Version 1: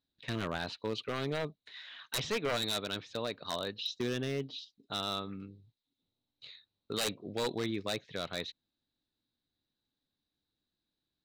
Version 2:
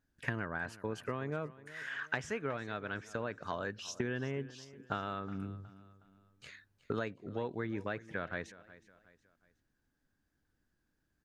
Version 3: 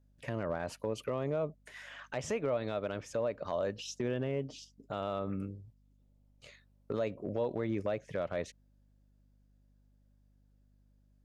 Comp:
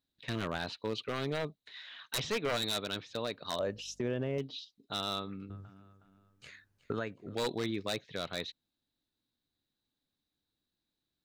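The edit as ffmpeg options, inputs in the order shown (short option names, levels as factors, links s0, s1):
-filter_complex "[0:a]asplit=3[s0][s1][s2];[s0]atrim=end=3.592[s3];[2:a]atrim=start=3.588:end=4.382[s4];[s1]atrim=start=4.378:end=5.502[s5];[1:a]atrim=start=5.498:end=7.352[s6];[s2]atrim=start=7.348[s7];[s3][s4]acrossfade=d=0.004:c1=hsin:c2=hsin[s8];[s8][s5]acrossfade=d=0.004:c1=hsin:c2=hsin[s9];[s9][s6]acrossfade=d=0.004:c1=hsin:c2=hsin[s10];[s10][s7]acrossfade=d=0.004:c1=hsin:c2=hsin"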